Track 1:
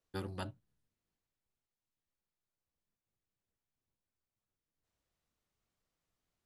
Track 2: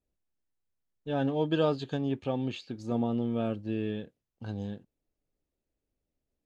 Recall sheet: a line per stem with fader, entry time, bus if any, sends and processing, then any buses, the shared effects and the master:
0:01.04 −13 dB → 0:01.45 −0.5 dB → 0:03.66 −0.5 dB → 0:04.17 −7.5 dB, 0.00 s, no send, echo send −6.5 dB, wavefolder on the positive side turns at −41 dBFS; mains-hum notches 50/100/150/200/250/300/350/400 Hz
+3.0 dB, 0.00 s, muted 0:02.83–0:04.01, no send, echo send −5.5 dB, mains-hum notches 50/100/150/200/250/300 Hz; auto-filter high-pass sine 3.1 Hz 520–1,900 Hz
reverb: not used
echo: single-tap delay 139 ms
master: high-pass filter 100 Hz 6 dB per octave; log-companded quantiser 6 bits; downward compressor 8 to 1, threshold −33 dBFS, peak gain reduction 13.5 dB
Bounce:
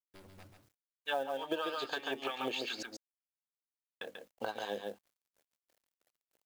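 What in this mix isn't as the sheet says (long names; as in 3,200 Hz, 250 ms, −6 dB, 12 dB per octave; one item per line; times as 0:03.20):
stem 2 +3.0 dB → +11.5 dB
master: missing high-pass filter 100 Hz 6 dB per octave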